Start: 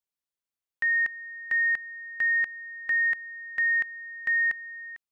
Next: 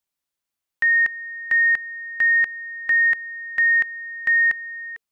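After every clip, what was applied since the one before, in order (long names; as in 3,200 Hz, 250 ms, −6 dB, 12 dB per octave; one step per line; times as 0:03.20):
notch filter 450 Hz, Q 12
level +7 dB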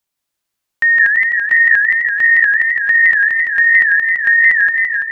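feedback echo with a swinging delay time 168 ms, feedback 70%, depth 194 cents, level −3 dB
level +6 dB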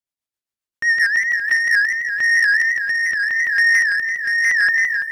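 leveller curve on the samples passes 2
rotating-speaker cabinet horn 7.5 Hz, later 0.9 Hz, at 0:01.09
level −7.5 dB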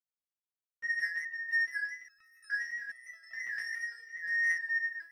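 high-pass filter 52 Hz 6 dB per octave
step-sequenced resonator 2.4 Hz 120–1,300 Hz
level −7 dB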